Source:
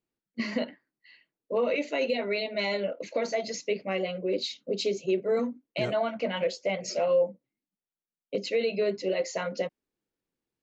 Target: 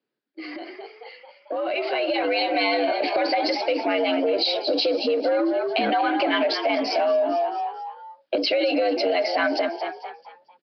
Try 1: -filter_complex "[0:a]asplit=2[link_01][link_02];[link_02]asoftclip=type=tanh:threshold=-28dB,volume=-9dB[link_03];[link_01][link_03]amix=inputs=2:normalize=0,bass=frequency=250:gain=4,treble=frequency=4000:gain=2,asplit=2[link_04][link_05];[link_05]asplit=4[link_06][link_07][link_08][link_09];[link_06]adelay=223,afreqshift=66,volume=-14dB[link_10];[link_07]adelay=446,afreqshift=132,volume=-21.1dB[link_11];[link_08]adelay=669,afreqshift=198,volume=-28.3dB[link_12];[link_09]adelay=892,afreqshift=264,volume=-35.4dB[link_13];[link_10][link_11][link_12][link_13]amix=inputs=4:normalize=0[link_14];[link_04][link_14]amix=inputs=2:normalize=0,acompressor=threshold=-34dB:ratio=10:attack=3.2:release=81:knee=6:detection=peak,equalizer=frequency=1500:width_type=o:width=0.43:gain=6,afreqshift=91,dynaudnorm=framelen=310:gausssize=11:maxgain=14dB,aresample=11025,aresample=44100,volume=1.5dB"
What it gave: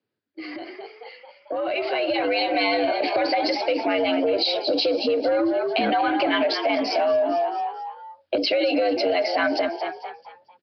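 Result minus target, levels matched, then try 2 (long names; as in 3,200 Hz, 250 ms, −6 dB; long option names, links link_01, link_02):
soft clipping: distortion −5 dB; 125 Hz band +3.5 dB
-filter_complex "[0:a]asplit=2[link_01][link_02];[link_02]asoftclip=type=tanh:threshold=-36.5dB,volume=-9dB[link_03];[link_01][link_03]amix=inputs=2:normalize=0,bass=frequency=250:gain=4,treble=frequency=4000:gain=2,asplit=2[link_04][link_05];[link_05]asplit=4[link_06][link_07][link_08][link_09];[link_06]adelay=223,afreqshift=66,volume=-14dB[link_10];[link_07]adelay=446,afreqshift=132,volume=-21.1dB[link_11];[link_08]adelay=669,afreqshift=198,volume=-28.3dB[link_12];[link_09]adelay=892,afreqshift=264,volume=-35.4dB[link_13];[link_10][link_11][link_12][link_13]amix=inputs=4:normalize=0[link_14];[link_04][link_14]amix=inputs=2:normalize=0,acompressor=threshold=-34dB:ratio=10:attack=3.2:release=81:knee=6:detection=peak,highpass=frequency=94:poles=1,equalizer=frequency=1500:width_type=o:width=0.43:gain=6,afreqshift=91,dynaudnorm=framelen=310:gausssize=11:maxgain=14dB,aresample=11025,aresample=44100,volume=1.5dB"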